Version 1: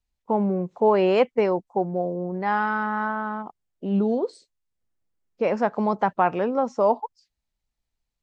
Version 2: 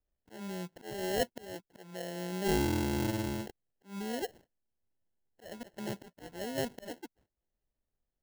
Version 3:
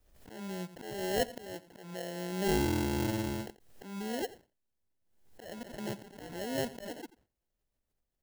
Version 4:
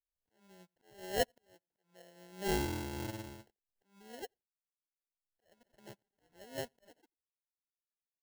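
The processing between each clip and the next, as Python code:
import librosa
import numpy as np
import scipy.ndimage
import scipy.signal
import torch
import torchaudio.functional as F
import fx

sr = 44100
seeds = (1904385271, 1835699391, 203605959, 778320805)

y1 = fx.auto_swell(x, sr, attack_ms=733.0)
y1 = fx.sample_hold(y1, sr, seeds[0], rate_hz=1200.0, jitter_pct=0)
y1 = fx.dynamic_eq(y1, sr, hz=1300.0, q=0.91, threshold_db=-43.0, ratio=4.0, max_db=-4)
y1 = y1 * librosa.db_to_amplitude(-5.0)
y2 = y1 + 10.0 ** (-17.5 / 20.0) * np.pad(y1, (int(87 * sr / 1000.0), 0))[:len(y1)]
y2 = fx.pre_swell(y2, sr, db_per_s=69.0)
y3 = fx.peak_eq(y2, sr, hz=230.0, db=-5.0, octaves=1.4)
y3 = 10.0 ** (-19.5 / 20.0) * np.tanh(y3 / 10.0 ** (-19.5 / 20.0))
y3 = fx.upward_expand(y3, sr, threshold_db=-54.0, expansion=2.5)
y3 = y3 * librosa.db_to_amplitude(2.5)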